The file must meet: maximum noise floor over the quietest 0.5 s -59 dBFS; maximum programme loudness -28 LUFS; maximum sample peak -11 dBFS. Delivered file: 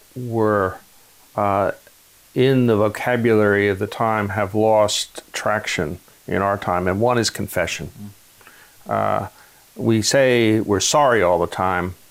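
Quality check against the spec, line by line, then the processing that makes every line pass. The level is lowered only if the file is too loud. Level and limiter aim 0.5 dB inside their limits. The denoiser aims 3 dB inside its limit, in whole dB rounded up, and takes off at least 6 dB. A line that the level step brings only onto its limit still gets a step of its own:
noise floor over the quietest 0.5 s -50 dBFS: fail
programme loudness -19.0 LUFS: fail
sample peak -5.5 dBFS: fail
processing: gain -9.5 dB

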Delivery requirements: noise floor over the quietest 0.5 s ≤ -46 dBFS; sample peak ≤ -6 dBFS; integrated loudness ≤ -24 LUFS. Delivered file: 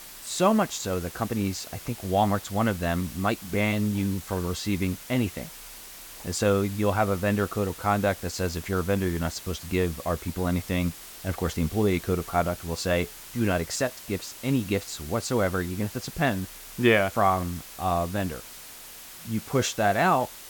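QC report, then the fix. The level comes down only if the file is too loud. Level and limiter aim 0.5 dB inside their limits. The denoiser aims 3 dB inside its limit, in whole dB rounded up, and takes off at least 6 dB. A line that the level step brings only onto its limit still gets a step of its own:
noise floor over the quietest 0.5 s -44 dBFS: fail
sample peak -7.5 dBFS: OK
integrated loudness -27.0 LUFS: OK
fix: denoiser 6 dB, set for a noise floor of -44 dBFS

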